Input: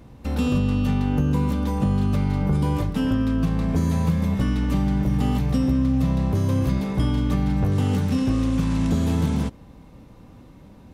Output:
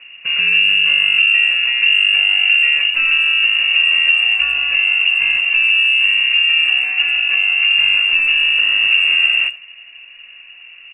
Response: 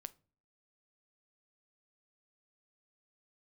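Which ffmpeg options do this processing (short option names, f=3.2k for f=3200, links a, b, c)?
-filter_complex "[0:a]aemphasis=mode=reproduction:type=cd,bandreject=f=60:t=h:w=6,bandreject=f=120:t=h:w=6,bandreject=f=180:t=h:w=6,bandreject=f=240:t=h:w=6,bandreject=f=300:t=h:w=6,lowpass=f=2.5k:t=q:w=0.5098,lowpass=f=2.5k:t=q:w=0.6013,lowpass=f=2.5k:t=q:w=0.9,lowpass=f=2.5k:t=q:w=2.563,afreqshift=-2900,asplit=2[a][b];[b]adelay=90,highpass=300,lowpass=3.4k,asoftclip=type=hard:threshold=-18.5dB,volume=-20dB[c];[a][c]amix=inputs=2:normalize=0,asubboost=boost=3.5:cutoff=73,asuperstop=centerf=810:order=4:qfactor=6.1,asplit=2[d][e];[1:a]atrim=start_sample=2205[f];[e][f]afir=irnorm=-1:irlink=0,volume=9dB[g];[d][g]amix=inputs=2:normalize=0,volume=-1dB"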